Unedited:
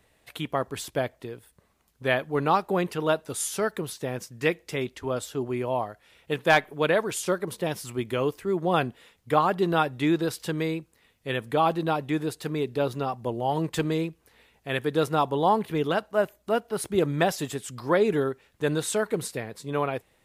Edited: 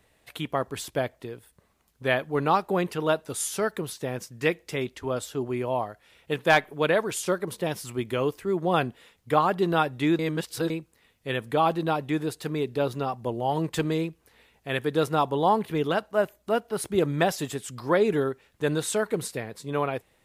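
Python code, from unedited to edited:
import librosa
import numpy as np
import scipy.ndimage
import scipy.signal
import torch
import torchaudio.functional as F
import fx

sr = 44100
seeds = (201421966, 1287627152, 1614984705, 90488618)

y = fx.edit(x, sr, fx.reverse_span(start_s=10.19, length_s=0.51), tone=tone)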